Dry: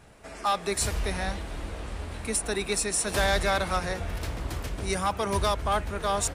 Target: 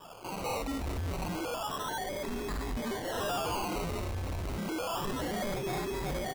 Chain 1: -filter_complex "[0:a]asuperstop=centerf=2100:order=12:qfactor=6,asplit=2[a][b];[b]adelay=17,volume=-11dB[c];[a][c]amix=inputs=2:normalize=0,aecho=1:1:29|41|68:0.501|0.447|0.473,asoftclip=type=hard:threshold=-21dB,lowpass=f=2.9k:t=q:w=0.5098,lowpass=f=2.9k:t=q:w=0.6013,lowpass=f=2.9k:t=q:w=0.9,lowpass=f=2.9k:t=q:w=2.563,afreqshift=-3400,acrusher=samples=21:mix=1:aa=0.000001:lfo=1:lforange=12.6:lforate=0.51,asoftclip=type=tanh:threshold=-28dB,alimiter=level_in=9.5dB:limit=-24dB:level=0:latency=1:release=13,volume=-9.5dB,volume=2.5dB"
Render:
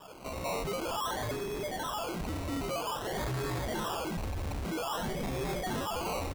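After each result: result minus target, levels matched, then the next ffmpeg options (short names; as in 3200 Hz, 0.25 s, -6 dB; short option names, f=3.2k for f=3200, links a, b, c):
hard clip: distortion +24 dB; decimation with a swept rate: distortion +7 dB
-filter_complex "[0:a]asuperstop=centerf=2100:order=12:qfactor=6,asplit=2[a][b];[b]adelay=17,volume=-11dB[c];[a][c]amix=inputs=2:normalize=0,aecho=1:1:29|41|68:0.501|0.447|0.473,asoftclip=type=hard:threshold=-12dB,lowpass=f=2.9k:t=q:w=0.5098,lowpass=f=2.9k:t=q:w=0.6013,lowpass=f=2.9k:t=q:w=0.9,lowpass=f=2.9k:t=q:w=2.563,afreqshift=-3400,acrusher=samples=21:mix=1:aa=0.000001:lfo=1:lforange=12.6:lforate=0.51,asoftclip=type=tanh:threshold=-28dB,alimiter=level_in=9.5dB:limit=-24dB:level=0:latency=1:release=13,volume=-9.5dB,volume=2.5dB"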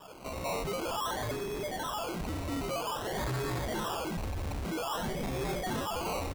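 decimation with a swept rate: distortion +9 dB
-filter_complex "[0:a]asuperstop=centerf=2100:order=12:qfactor=6,asplit=2[a][b];[b]adelay=17,volume=-11dB[c];[a][c]amix=inputs=2:normalize=0,aecho=1:1:29|41|68:0.501|0.447|0.473,asoftclip=type=hard:threshold=-12dB,lowpass=f=2.9k:t=q:w=0.5098,lowpass=f=2.9k:t=q:w=0.6013,lowpass=f=2.9k:t=q:w=0.9,lowpass=f=2.9k:t=q:w=2.563,afreqshift=-3400,acrusher=samples=21:mix=1:aa=0.000001:lfo=1:lforange=12.6:lforate=0.3,asoftclip=type=tanh:threshold=-28dB,alimiter=level_in=9.5dB:limit=-24dB:level=0:latency=1:release=13,volume=-9.5dB,volume=2.5dB"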